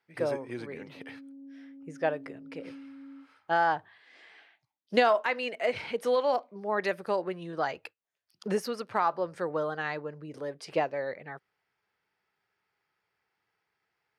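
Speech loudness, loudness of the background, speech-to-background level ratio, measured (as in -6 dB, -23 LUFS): -30.5 LUFS, -49.0 LUFS, 18.5 dB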